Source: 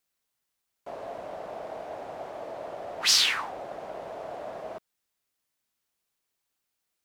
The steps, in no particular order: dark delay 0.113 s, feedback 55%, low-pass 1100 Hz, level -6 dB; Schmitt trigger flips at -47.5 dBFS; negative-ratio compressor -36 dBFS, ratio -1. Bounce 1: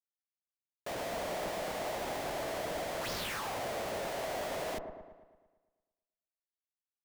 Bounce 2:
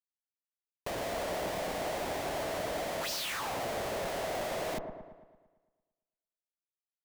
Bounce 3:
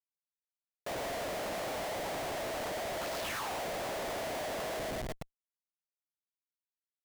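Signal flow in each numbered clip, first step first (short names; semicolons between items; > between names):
negative-ratio compressor > Schmitt trigger > dark delay; Schmitt trigger > negative-ratio compressor > dark delay; negative-ratio compressor > dark delay > Schmitt trigger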